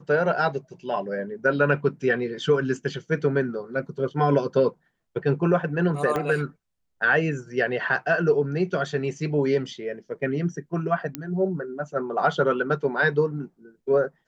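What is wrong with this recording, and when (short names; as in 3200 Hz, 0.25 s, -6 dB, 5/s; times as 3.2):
6.16 pop -14 dBFS
11.15 pop -12 dBFS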